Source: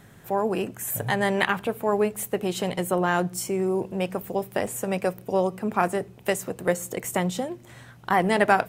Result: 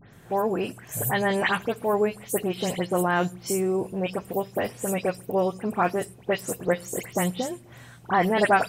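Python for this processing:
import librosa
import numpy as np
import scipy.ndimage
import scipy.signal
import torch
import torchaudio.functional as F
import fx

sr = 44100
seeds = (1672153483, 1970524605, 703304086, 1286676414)

y = fx.spec_delay(x, sr, highs='late', ms=127)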